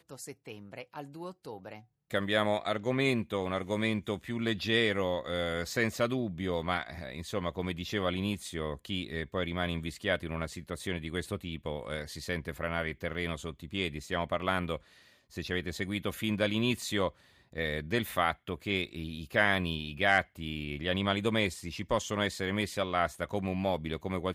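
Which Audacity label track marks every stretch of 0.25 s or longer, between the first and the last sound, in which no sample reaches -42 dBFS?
1.790000	2.110000	silence
14.770000	15.360000	silence
17.100000	17.530000	silence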